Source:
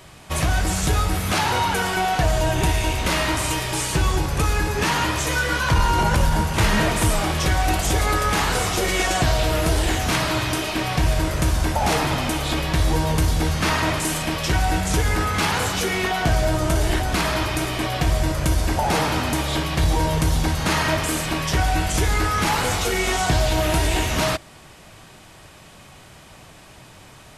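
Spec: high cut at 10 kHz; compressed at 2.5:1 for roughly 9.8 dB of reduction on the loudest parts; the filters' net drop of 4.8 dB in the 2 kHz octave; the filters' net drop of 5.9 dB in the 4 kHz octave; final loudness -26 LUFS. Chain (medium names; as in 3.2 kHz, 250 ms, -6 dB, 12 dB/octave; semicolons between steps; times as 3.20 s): low-pass 10 kHz; peaking EQ 2 kHz -5 dB; peaking EQ 4 kHz -6 dB; compression 2.5:1, threshold -30 dBFS; trim +4.5 dB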